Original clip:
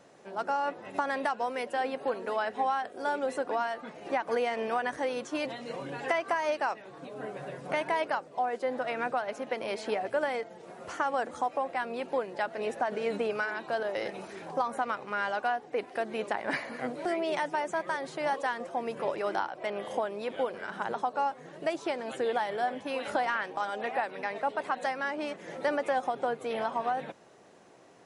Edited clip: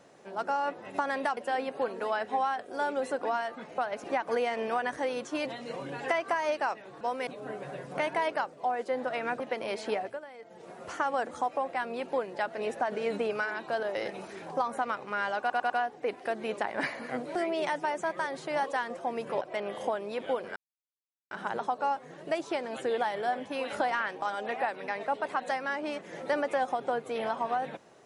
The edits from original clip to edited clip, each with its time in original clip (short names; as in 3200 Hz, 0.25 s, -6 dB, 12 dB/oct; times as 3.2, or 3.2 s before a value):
1.37–1.63 move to 7.01
9.14–9.4 move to 4.04
9.97–10.62 dip -16 dB, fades 0.24 s
15.4 stutter 0.10 s, 4 plays
19.11–19.51 cut
20.66 insert silence 0.75 s